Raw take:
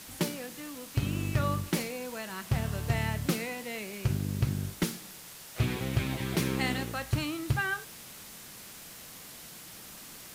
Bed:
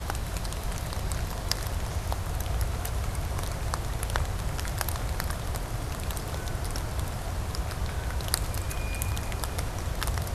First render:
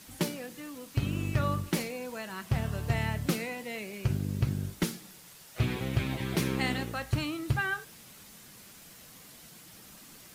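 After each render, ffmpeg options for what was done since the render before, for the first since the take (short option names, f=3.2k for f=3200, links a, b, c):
-af "afftdn=nr=6:nf=-48"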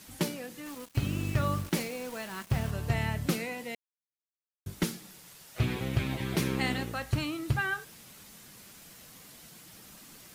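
-filter_complex "[0:a]asettb=1/sr,asplit=3[a][b][c];[a]atrim=end=0.664[d];[b]atrim=start=0.66:end=2.71,asetpts=PTS-STARTPTS,afade=t=in:d=0.004:c=qsin,afade=t=out:st=2.046:d=0.004:c=qsin,acrusher=bits=6:mix=0:aa=0.5[e];[c]atrim=start=2.706[f];[d][e]acrossfade=d=0.004:c1=hsin:c2=qsin[g];[g][f]acrossfade=d=0.004:c1=qsin:c2=hsin,asplit=3[h][i][j];[h]atrim=end=3.75,asetpts=PTS-STARTPTS,afade=t=out:st=3.746:d=0.004:c=hsin[k];[i]atrim=start=3.75:end=4.66,asetpts=PTS-STARTPTS,volume=0[l];[j]atrim=start=4.66,asetpts=PTS-STARTPTS,afade=t=in:d=0.004:c=hsin[m];[k][l][m]concat=n=3:v=0:a=1"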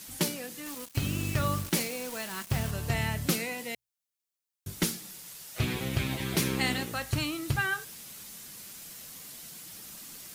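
-af "highshelf=f=3.3k:g=8.5,bandreject=f=60:t=h:w=6,bandreject=f=120:t=h:w=6"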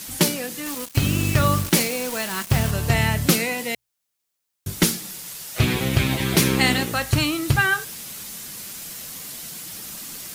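-af "volume=10dB"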